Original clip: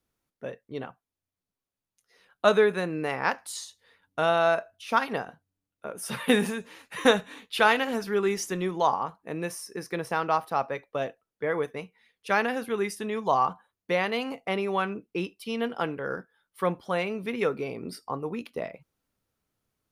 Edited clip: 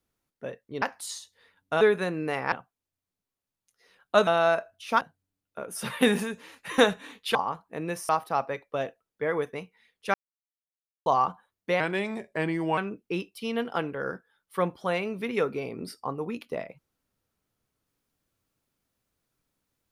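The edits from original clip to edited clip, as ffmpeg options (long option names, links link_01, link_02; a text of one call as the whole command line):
ffmpeg -i in.wav -filter_complex "[0:a]asplit=12[link_01][link_02][link_03][link_04][link_05][link_06][link_07][link_08][link_09][link_10][link_11][link_12];[link_01]atrim=end=0.822[link_13];[link_02]atrim=start=3.278:end=4.272[link_14];[link_03]atrim=start=2.568:end=3.282[link_15];[link_04]atrim=start=0.818:end=2.572[link_16];[link_05]atrim=start=4.268:end=5.012[link_17];[link_06]atrim=start=5.278:end=7.622[link_18];[link_07]atrim=start=8.888:end=9.632[link_19];[link_08]atrim=start=10.298:end=12.35,asetpts=PTS-STARTPTS,afade=type=out:start_time=2.048:duration=0.004:curve=hsin[link_20];[link_09]atrim=start=12.35:end=13.27,asetpts=PTS-STARTPTS,volume=0[link_21];[link_10]atrim=start=13.27:end=14.014,asetpts=PTS-STARTPTS,afade=type=in:duration=0.004:curve=hsin[link_22];[link_11]atrim=start=14.01:end=14.82,asetpts=PTS-STARTPTS,asetrate=36603,aresample=44100,atrim=end_sample=43037,asetpts=PTS-STARTPTS[link_23];[link_12]atrim=start=14.816[link_24];[link_13][link_14]acrossfade=duration=0.004:curve1=hsin:curve2=hsin[link_25];[link_25][link_15]acrossfade=duration=0.004:curve1=hsin:curve2=hsin[link_26];[link_26][link_16]acrossfade=duration=0.004:curve1=hsin:curve2=hsin[link_27];[link_27][link_17]acrossfade=duration=0.004:curve1=hsin:curve2=hsin[link_28];[link_28][link_18]acrossfade=duration=0.004:curve1=hsin:curve2=hsin[link_29];[link_29][link_19]acrossfade=duration=0.004:curve1=hsin:curve2=hsin[link_30];[link_20][link_21][link_22]concat=n=3:v=0:a=1[link_31];[link_30][link_31]acrossfade=duration=0.004:curve1=hsin:curve2=hsin[link_32];[link_32][link_23]acrossfade=duration=0.004:curve1=hsin:curve2=hsin[link_33];[link_33][link_24]acrossfade=duration=0.004:curve1=hsin:curve2=hsin" out.wav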